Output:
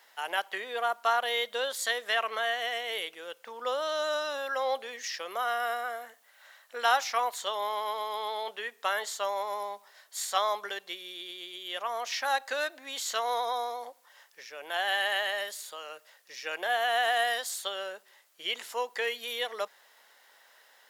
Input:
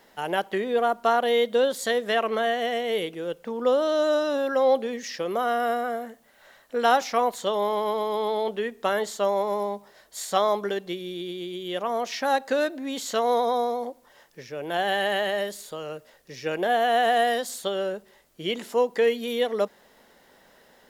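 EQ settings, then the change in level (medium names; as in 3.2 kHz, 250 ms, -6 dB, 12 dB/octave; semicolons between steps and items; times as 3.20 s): high-pass 1 kHz 12 dB/octave; 0.0 dB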